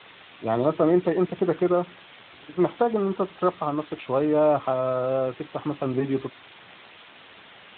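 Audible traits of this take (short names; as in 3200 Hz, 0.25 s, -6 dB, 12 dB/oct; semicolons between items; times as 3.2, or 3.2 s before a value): a quantiser's noise floor 6-bit, dither triangular; Speex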